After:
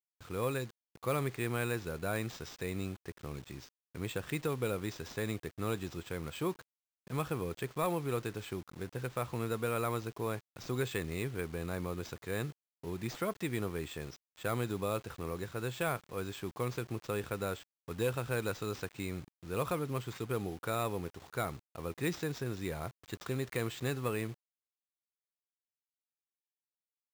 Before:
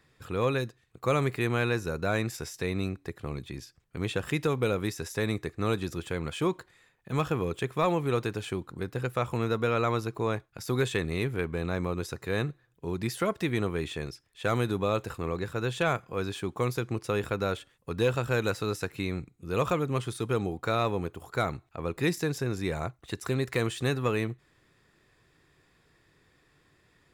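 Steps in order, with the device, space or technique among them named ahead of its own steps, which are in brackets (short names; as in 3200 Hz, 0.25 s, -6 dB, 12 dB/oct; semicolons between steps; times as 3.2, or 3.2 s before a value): early 8-bit sampler (sample-rate reducer 11000 Hz, jitter 0%; bit-crush 8-bit); gain -7 dB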